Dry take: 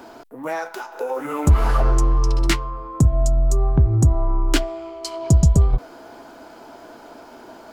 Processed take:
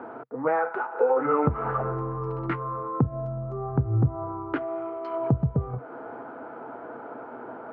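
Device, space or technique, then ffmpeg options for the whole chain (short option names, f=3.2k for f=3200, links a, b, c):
bass amplifier: -af "acompressor=threshold=-21dB:ratio=5,highpass=f=87:w=0.5412,highpass=f=87:w=1.3066,equalizer=f=130:t=q:w=4:g=8,equalizer=f=250:t=q:w=4:g=4,equalizer=f=470:t=q:w=4:g=10,equalizer=f=820:t=q:w=4:g=5,equalizer=f=1.3k:t=q:w=4:g=9,lowpass=f=2k:w=0.5412,lowpass=f=2k:w=1.3066,volume=-2dB"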